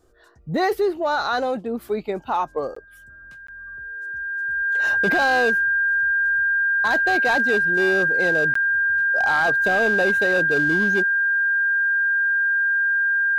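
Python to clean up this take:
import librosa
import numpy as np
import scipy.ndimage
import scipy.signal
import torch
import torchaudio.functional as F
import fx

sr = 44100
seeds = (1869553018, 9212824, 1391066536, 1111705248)

y = fx.fix_declip(x, sr, threshold_db=-14.0)
y = fx.notch(y, sr, hz=1600.0, q=30.0)
y = fx.fix_interpolate(y, sr, at_s=(2.75, 3.47, 8.54), length_ms=14.0)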